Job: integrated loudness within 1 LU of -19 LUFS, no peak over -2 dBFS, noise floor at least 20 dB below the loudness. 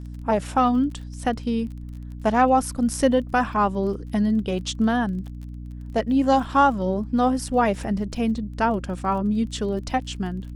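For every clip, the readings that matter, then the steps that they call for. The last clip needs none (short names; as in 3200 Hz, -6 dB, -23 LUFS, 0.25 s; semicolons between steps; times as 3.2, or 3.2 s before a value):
ticks 29/s; hum 60 Hz; harmonics up to 300 Hz; hum level -33 dBFS; loudness -23.0 LUFS; peak -5.5 dBFS; loudness target -19.0 LUFS
-> de-click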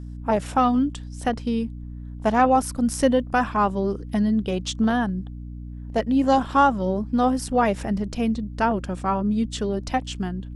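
ticks 0/s; hum 60 Hz; harmonics up to 300 Hz; hum level -33 dBFS
-> de-hum 60 Hz, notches 5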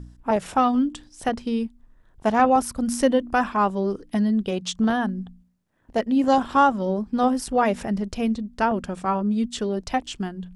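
hum none; loudness -23.5 LUFS; peak -5.5 dBFS; loudness target -19.0 LUFS
-> gain +4.5 dB; limiter -2 dBFS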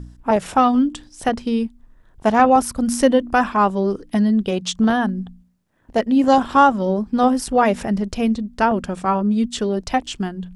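loudness -19.0 LUFS; peak -2.0 dBFS; noise floor -53 dBFS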